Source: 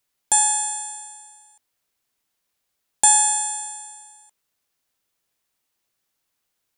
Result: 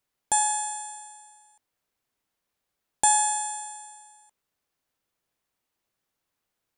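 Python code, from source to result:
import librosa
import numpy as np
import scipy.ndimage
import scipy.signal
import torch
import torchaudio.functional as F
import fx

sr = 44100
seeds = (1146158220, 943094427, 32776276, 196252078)

y = fx.high_shelf(x, sr, hz=2300.0, db=-8.0)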